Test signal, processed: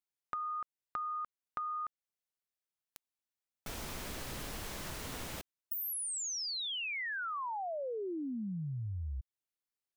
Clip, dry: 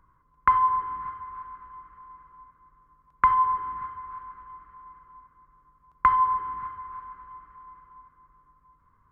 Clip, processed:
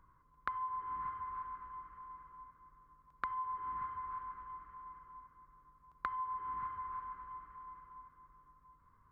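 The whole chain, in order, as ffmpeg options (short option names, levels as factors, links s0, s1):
-af "acompressor=threshold=0.0224:ratio=12,volume=0.668"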